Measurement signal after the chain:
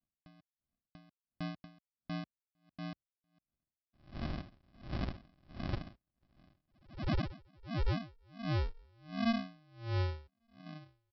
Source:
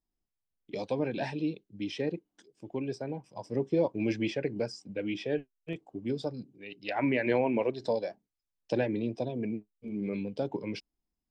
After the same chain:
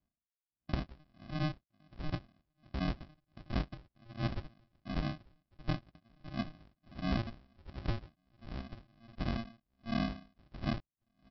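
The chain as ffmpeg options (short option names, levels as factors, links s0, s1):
-filter_complex "[0:a]highpass=f=51:w=0.5412,highpass=f=51:w=1.3066,aecho=1:1:1145|2290:0.0631|0.0246,asplit=2[s0][s1];[s1]asoftclip=type=tanh:threshold=0.0335,volume=0.562[s2];[s0][s2]amix=inputs=2:normalize=0,adynamicequalizer=threshold=0.00562:dfrequency=1200:dqfactor=1.7:tfrequency=1200:tqfactor=1.7:attack=5:release=100:ratio=0.375:range=3:mode=boostabove:tftype=bell,acompressor=threshold=0.0158:ratio=4,aresample=11025,acrusher=samples=24:mix=1:aa=0.000001,aresample=44100,aeval=exprs='val(0)*pow(10,-35*(0.5-0.5*cos(2*PI*1.4*n/s))/20)':c=same,volume=2"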